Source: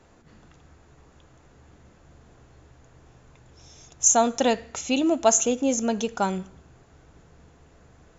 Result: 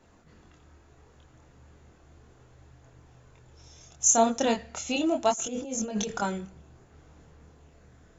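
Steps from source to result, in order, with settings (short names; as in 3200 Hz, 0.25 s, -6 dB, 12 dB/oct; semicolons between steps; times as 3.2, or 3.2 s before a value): 5.31–6.22 negative-ratio compressor -30 dBFS, ratio -1; chorus voices 2, 0.35 Hz, delay 25 ms, depth 1.6 ms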